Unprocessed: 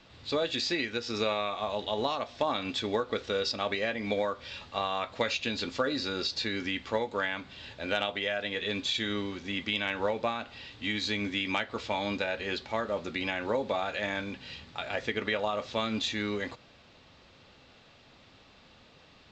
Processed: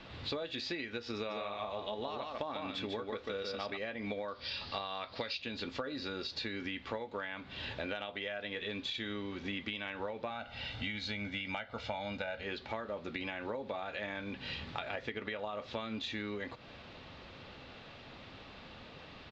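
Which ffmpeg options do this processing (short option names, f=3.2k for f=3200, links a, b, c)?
-filter_complex "[0:a]asplit=3[a][b][c];[a]afade=t=out:st=1.29:d=0.02[d];[b]aecho=1:1:146:0.596,afade=t=in:st=1.29:d=0.02,afade=t=out:st=3.76:d=0.02[e];[c]afade=t=in:st=3.76:d=0.02[f];[d][e][f]amix=inputs=3:normalize=0,asettb=1/sr,asplit=3[g][h][i];[g]atrim=end=4.284[j];[h]atrim=start=4.28:end=5.42,asetpts=PTS-STARTPTS,afade=t=in:d=0.004:c=qsin,afade=t=out:st=1.136:d=0.004:c=qsin,lowpass=f=4.8k:t=q:w=6.5[k];[i]atrim=start=5.416[l];[j][k]acrossfade=d=0.004:c1=hsin:c2=qsin[m];[m][l]acrossfade=d=0.004:c1=qsin:c2=hsin,asettb=1/sr,asplit=3[n][o][p];[n]atrim=end=10.304[q];[o]atrim=start=10.3:end=12.44,asetpts=PTS-STARTPTS,afade=t=in:d=0.004:c=qsin,afade=t=out:st=2.136:d=0.004:c=qsin,aecho=1:1:1.4:0.65,atrim=end_sample=94374[r];[p]atrim=start=12.436[s];[q][r]acrossfade=d=0.004:c1=hsin:c2=qsin[t];[t][s]acrossfade=d=0.004:c1=qsin:c2=hsin,lowpass=3.9k,acompressor=threshold=-43dB:ratio=8,volume=6.5dB"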